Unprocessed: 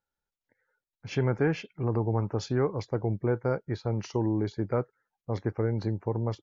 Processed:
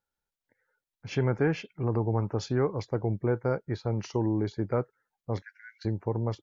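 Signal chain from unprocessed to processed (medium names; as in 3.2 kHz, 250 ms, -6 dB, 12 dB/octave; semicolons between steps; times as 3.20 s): 5.42–5.85 s: brick-wall FIR high-pass 1.4 kHz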